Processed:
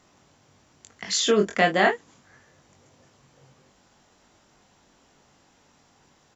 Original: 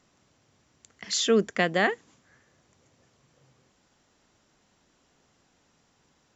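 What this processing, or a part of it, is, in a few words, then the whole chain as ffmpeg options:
parallel compression: -filter_complex "[0:a]asettb=1/sr,asplit=3[s0][s1][s2];[s0]atrim=end=1.244[s3];[s1]atrim=start=1.24:end=1.89,asetpts=PTS-STARTPTS,afade=t=in:d=0.004:c=qsin,afade=t=out:st=0.646:d=0.004:c=qsin,asplit=2[s4][s5];[s5]adelay=24,volume=0.631[s6];[s4][s6]amix=inputs=2:normalize=0,atrim=end_sample=28665[s7];[s2]atrim=start=1.886[s8];[s3][s7]acrossfade=d=0.004:c1=hsin:c2=qsin[s9];[s9][s8]acrossfade=d=0.004:c1=qsin:c2=hsin,asplit=2[s10][s11];[s11]acompressor=threshold=0.0158:ratio=6,volume=0.708[s12];[s10][s12]amix=inputs=2:normalize=0,equalizer=f=830:t=o:w=0.77:g=3.5,asplit=2[s13][s14];[s14]adelay=21,volume=0.531[s15];[s13][s15]amix=inputs=2:normalize=0"

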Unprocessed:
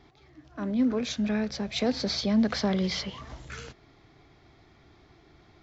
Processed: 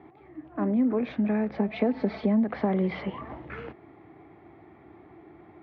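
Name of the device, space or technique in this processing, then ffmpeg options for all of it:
bass amplifier: -filter_complex "[0:a]asettb=1/sr,asplit=3[s0][s1][s2];[s0]atrim=end=1.574[s3];[s1]atrim=start=1.57:end=2.44,asetpts=PTS-STARTPTS,afade=t=in:d=0.004:c=qsin,afade=t=out:st=0.866:d=0.004:c=qsin,aecho=1:1:4.6:0.68,atrim=end_sample=38367[s4];[s2]atrim=start=2.436[s5];[s3][s4]acrossfade=d=0.004:c1=hsin:c2=qsin[s6];[s6][s5]acrossfade=d=0.004:c1=qsin:c2=hsin,acompressor=threshold=0.0398:ratio=4,highpass=f=82:w=0.5412,highpass=f=82:w=1.3066,equalizer=f=88:t=q:w=4:g=-5,equalizer=f=130:t=q:w=4:g=-6,equalizer=f=330:t=q:w=4:g=7,equalizer=f=800:t=q:w=4:g=4,equalizer=f=1500:t=q:w=4:g=-6,lowpass=f=2100:w=0.5412,lowpass=f=2100:w=1.3066,volume=1.88"

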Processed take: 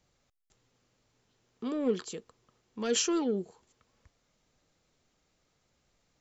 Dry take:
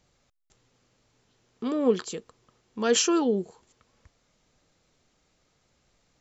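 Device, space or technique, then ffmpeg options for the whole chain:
one-band saturation: -filter_complex "[0:a]acrossover=split=520|2000[s0][s1][s2];[s1]asoftclip=type=tanh:threshold=0.0237[s3];[s0][s3][s2]amix=inputs=3:normalize=0,volume=0.562"

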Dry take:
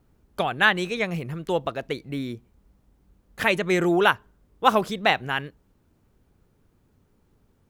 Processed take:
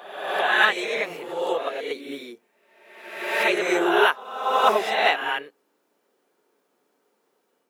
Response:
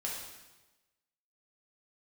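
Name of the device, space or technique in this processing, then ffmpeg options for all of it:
ghost voice: -filter_complex "[0:a]areverse[s0];[1:a]atrim=start_sample=2205[s1];[s0][s1]afir=irnorm=-1:irlink=0,areverse,highpass=f=330:w=0.5412,highpass=f=330:w=1.3066"

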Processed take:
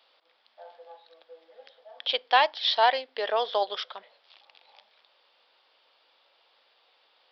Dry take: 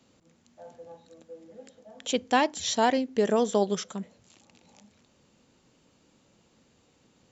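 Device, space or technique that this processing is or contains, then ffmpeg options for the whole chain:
musical greeting card: -af "aresample=11025,aresample=44100,highpass=f=620:w=0.5412,highpass=f=620:w=1.3066,equalizer=f=3400:t=o:w=0.22:g=7,volume=1.58"

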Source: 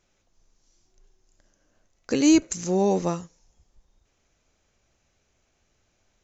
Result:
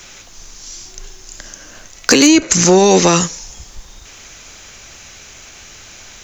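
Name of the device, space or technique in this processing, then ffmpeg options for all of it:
mastering chain: -filter_complex "[0:a]equalizer=f=610:t=o:w=0.77:g=-2.5,acrossover=split=240|480|1700[s0][s1][s2][s3];[s0]acompressor=threshold=0.0112:ratio=4[s4];[s1]acompressor=threshold=0.0447:ratio=4[s5];[s2]acompressor=threshold=0.0141:ratio=4[s6];[s3]acompressor=threshold=0.0126:ratio=4[s7];[s4][s5][s6][s7]amix=inputs=4:normalize=0,acompressor=threshold=0.0251:ratio=2,asoftclip=type=tanh:threshold=0.0708,tiltshelf=f=970:g=-6,asoftclip=type=hard:threshold=0.0398,alimiter=level_in=37.6:limit=0.891:release=50:level=0:latency=1,asplit=3[s8][s9][s10];[s8]afade=t=out:st=2.27:d=0.02[s11];[s9]lowpass=6800,afade=t=in:st=2.27:d=0.02,afade=t=out:st=3.19:d=0.02[s12];[s10]afade=t=in:st=3.19:d=0.02[s13];[s11][s12][s13]amix=inputs=3:normalize=0,volume=0.891"

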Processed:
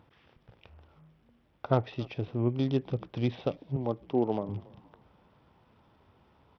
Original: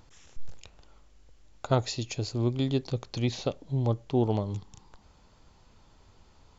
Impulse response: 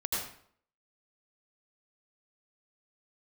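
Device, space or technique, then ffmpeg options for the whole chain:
Bluetooth headset: -filter_complex "[0:a]aemphasis=mode=reproduction:type=75kf,asettb=1/sr,asplit=3[s0][s1][s2];[s0]atrim=end=3.764[s3];[s1]atrim=start=3.76:end=4.49,asetpts=PTS-STARTPTS,afade=t=in:d=0.004:c=qsin,afade=t=out:st=0.726:d=0.004:c=qsin,highpass=200[s4];[s2]atrim=start=4.486[s5];[s3][s4]acrossfade=d=0.004:c1=hsin:c2=qsin[s6];[s6][s5]acrossfade=d=0.004:c1=qsin:c2=hsin,asplit=4[s7][s8][s9][s10];[s8]adelay=279,afreqshift=-79,volume=0.0794[s11];[s9]adelay=558,afreqshift=-158,volume=0.0295[s12];[s10]adelay=837,afreqshift=-237,volume=0.0108[s13];[s7][s11][s12][s13]amix=inputs=4:normalize=0,highpass=100,aresample=8000,aresample=44100" -ar 44100 -c:a sbc -b:a 64k

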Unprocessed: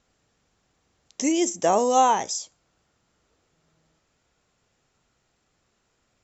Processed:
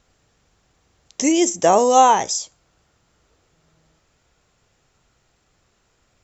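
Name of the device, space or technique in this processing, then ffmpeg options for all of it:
low shelf boost with a cut just above: -af "lowshelf=f=100:g=5.5,equalizer=f=230:t=o:w=0.73:g=-3,volume=2"

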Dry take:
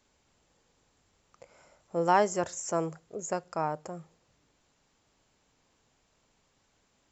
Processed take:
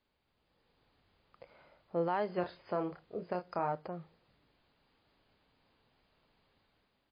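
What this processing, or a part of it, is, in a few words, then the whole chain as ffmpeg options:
low-bitrate web radio: -filter_complex "[0:a]asplit=3[s0][s1][s2];[s0]afade=t=out:st=2.28:d=0.02[s3];[s1]asplit=2[s4][s5];[s5]adelay=28,volume=0.501[s6];[s4][s6]amix=inputs=2:normalize=0,afade=t=in:st=2.28:d=0.02,afade=t=out:st=3.72:d=0.02[s7];[s2]afade=t=in:st=3.72:d=0.02[s8];[s3][s7][s8]amix=inputs=3:normalize=0,dynaudnorm=f=170:g=7:m=2.51,alimiter=limit=0.224:level=0:latency=1:release=185,volume=0.355" -ar 11025 -c:a libmp3lame -b:a 24k

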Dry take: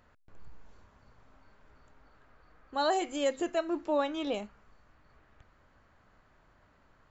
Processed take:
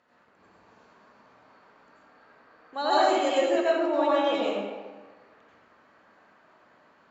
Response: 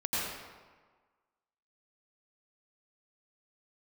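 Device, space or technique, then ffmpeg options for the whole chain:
supermarket ceiling speaker: -filter_complex "[0:a]highpass=270,lowpass=6800[s0];[1:a]atrim=start_sample=2205[s1];[s0][s1]afir=irnorm=-1:irlink=0"

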